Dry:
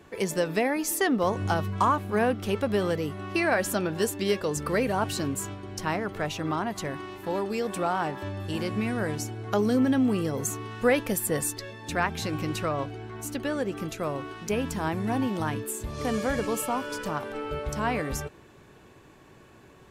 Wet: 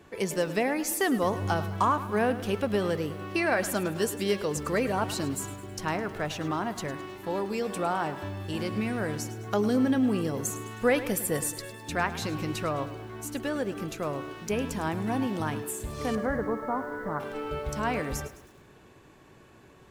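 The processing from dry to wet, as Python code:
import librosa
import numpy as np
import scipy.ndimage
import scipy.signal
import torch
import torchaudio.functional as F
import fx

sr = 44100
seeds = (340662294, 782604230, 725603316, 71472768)

y = fx.brickwall_lowpass(x, sr, high_hz=2200.0, at=(16.15, 17.2))
y = fx.echo_crushed(y, sr, ms=105, feedback_pct=55, bits=8, wet_db=-14)
y = y * 10.0 ** (-1.5 / 20.0)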